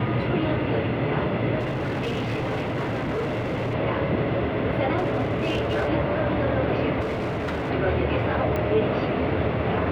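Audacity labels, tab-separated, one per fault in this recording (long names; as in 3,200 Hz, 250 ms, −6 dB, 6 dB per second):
1.590000	3.750000	clipping −23.5 dBFS
4.970000	5.890000	clipping −20 dBFS
7.000000	7.710000	clipping −24 dBFS
8.560000	8.560000	click −16 dBFS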